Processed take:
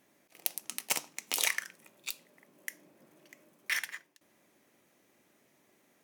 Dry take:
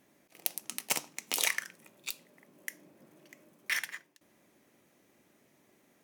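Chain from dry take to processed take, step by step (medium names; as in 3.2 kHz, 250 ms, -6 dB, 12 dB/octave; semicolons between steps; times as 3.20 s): bass shelf 350 Hz -5 dB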